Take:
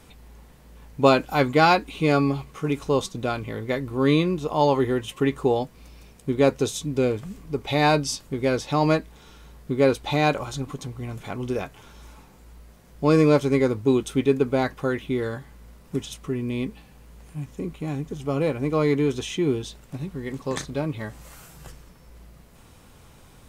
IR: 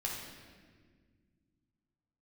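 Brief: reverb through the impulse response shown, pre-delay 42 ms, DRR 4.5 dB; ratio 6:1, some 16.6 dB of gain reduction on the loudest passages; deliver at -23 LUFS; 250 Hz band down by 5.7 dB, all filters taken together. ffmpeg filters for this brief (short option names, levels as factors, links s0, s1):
-filter_complex "[0:a]equalizer=f=250:t=o:g=-7.5,acompressor=threshold=0.0251:ratio=6,asplit=2[s0][s1];[1:a]atrim=start_sample=2205,adelay=42[s2];[s1][s2]afir=irnorm=-1:irlink=0,volume=0.447[s3];[s0][s3]amix=inputs=2:normalize=0,volume=4.22"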